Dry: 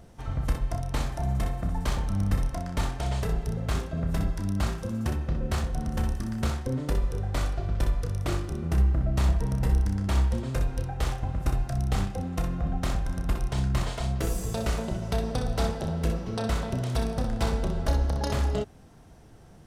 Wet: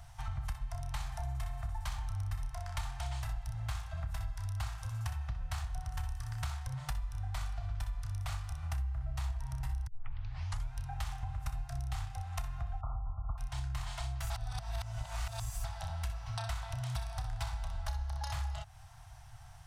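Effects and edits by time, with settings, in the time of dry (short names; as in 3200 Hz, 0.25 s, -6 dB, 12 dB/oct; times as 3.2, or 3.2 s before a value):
9.87 tape start 0.86 s
12.81–13.38 brick-wall FIR low-pass 1400 Hz
14.3–15.64 reverse
whole clip: elliptic band-stop 120–760 Hz, stop band 40 dB; compressor 4:1, threshold -38 dBFS; gain +2 dB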